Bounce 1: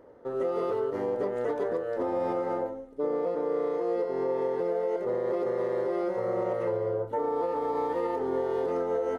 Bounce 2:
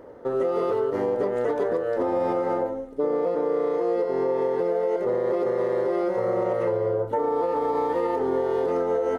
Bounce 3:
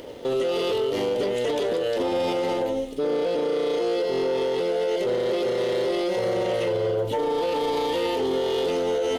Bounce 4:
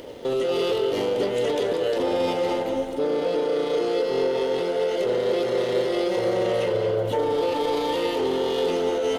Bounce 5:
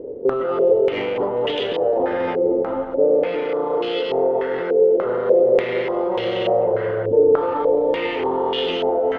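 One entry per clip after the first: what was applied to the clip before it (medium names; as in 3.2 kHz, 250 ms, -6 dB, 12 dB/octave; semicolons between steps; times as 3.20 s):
compression 2:1, threshold -32 dBFS, peak gain reduction 4.5 dB; trim +8.5 dB
resonant high shelf 2.1 kHz +13 dB, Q 3; waveshaping leveller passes 1; peak limiter -21.5 dBFS, peak gain reduction 7 dB; trim +3 dB
tape echo 213 ms, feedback 65%, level -6 dB, low-pass 2.5 kHz
step-sequenced low-pass 3.4 Hz 430–3000 Hz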